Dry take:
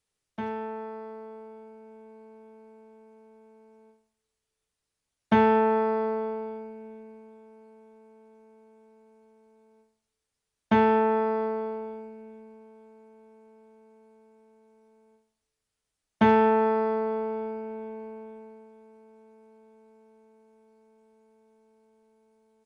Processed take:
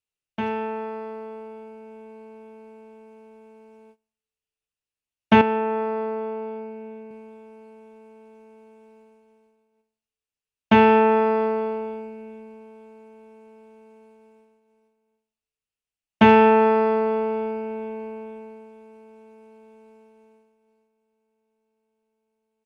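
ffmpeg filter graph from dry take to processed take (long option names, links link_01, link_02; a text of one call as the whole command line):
ffmpeg -i in.wav -filter_complex "[0:a]asettb=1/sr,asplit=3[link_01][link_02][link_03];[link_01]atrim=end=5.414[link_04];[link_02]atrim=start=5.41:end=7.11,asetpts=PTS-STARTPTS,afade=type=in:duration=0.004:curve=qsin,afade=type=out:start_time=1.696:duration=0.004:curve=qsin,highpass=150,highshelf=frequency=3100:gain=-7,acompressor=threshold=-39dB:ratio=1.5:attack=3.2:release=140:knee=1:detection=peak[link_05];[link_03]atrim=start=7.106[link_06];[link_04][link_05]acrossfade=duration=0.004:curve1=hsin:curve2=qsin[link_07];[link_07][link_06]acrossfade=duration=0.004:curve1=qsin:curve2=hsin,equalizer=frequency=2700:width=4.1:gain=10.5,agate=range=-18dB:threshold=-58dB:ratio=16:detection=peak,volume=6dB" out.wav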